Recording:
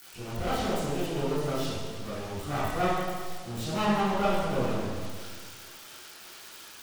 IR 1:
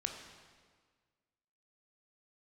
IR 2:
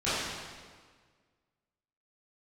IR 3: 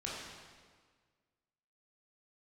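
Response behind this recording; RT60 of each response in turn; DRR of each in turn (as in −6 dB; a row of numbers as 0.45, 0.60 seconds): 2; 1.6, 1.6, 1.6 seconds; 3.0, −14.5, −6.0 decibels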